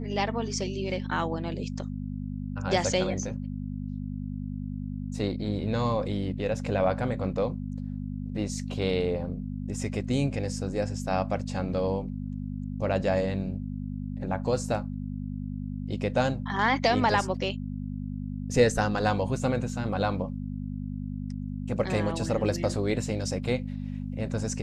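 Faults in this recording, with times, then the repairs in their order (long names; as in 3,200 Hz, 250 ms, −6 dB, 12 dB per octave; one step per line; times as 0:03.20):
mains hum 50 Hz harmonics 5 −34 dBFS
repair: hum removal 50 Hz, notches 5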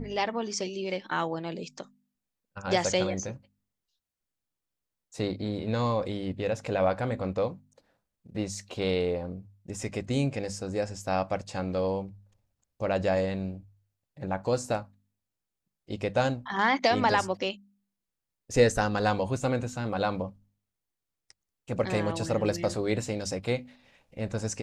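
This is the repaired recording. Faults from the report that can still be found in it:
none of them is left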